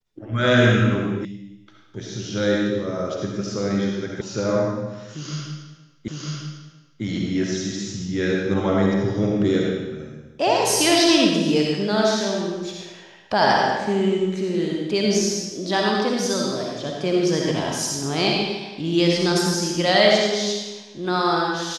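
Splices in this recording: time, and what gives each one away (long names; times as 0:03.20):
0:01.25: cut off before it has died away
0:04.21: cut off before it has died away
0:06.08: the same again, the last 0.95 s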